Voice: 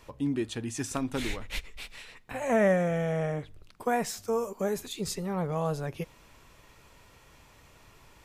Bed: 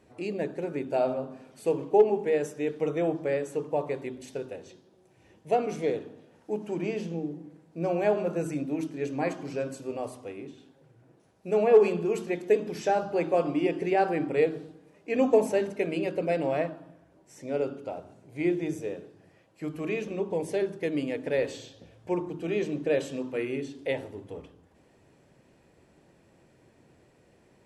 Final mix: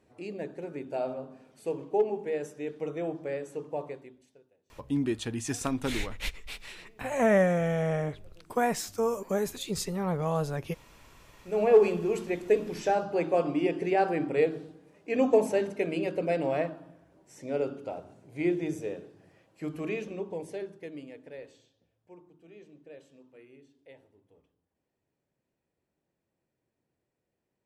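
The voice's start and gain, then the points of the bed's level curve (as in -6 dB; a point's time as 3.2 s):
4.70 s, +1.0 dB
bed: 3.85 s -6 dB
4.54 s -30 dB
11 s -30 dB
11.63 s -1 dB
19.79 s -1 dB
21.94 s -23 dB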